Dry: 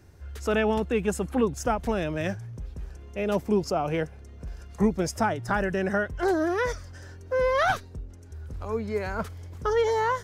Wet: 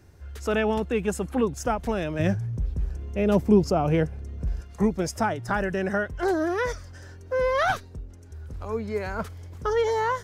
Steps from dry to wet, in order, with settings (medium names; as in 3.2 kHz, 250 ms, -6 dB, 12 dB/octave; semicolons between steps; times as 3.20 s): 2.19–4.61 s: bass shelf 360 Hz +10 dB